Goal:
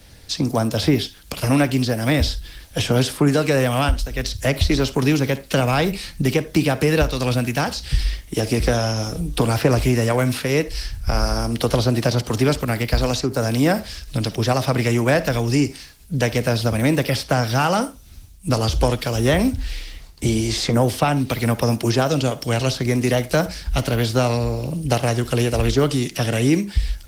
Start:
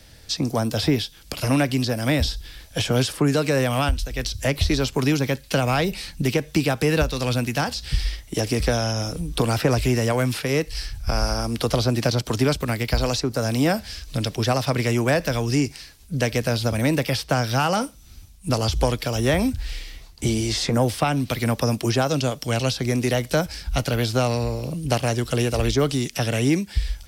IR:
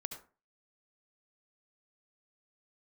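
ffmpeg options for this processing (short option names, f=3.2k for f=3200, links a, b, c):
-filter_complex "[0:a]asplit=2[a][b];[1:a]atrim=start_sample=2205,asetrate=61740,aresample=44100[c];[b][c]afir=irnorm=-1:irlink=0,volume=-1.5dB[d];[a][d]amix=inputs=2:normalize=0" -ar 48000 -c:a libopus -b:a 20k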